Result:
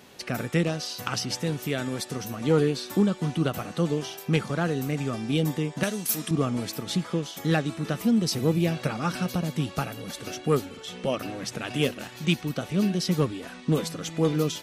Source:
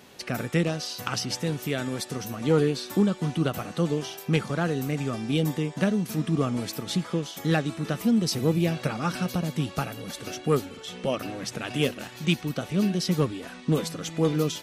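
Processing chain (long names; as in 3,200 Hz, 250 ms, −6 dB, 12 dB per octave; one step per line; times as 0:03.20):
0:05.83–0:06.31: RIAA equalisation recording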